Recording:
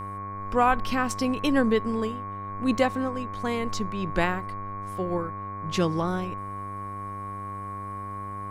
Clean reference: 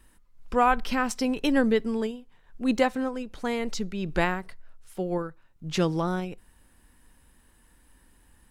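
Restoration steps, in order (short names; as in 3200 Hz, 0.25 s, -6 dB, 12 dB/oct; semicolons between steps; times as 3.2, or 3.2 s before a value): de-hum 99.6 Hz, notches 24; notch 1100 Hz, Q 30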